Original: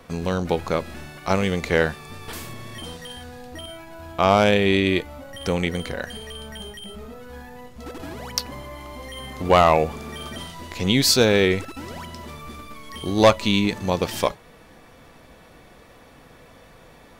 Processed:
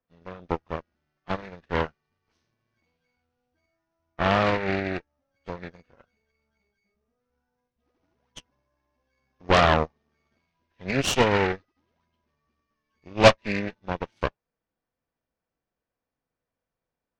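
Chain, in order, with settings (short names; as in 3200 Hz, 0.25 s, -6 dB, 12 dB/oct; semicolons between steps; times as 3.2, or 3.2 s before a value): nonlinear frequency compression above 1100 Hz 1.5:1; added harmonics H 6 -9 dB, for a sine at -3 dBFS; upward expander 2.5:1, over -34 dBFS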